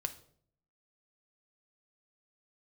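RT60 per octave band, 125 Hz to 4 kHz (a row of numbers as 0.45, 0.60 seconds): 0.85, 0.80, 0.65, 0.50, 0.45, 0.40 seconds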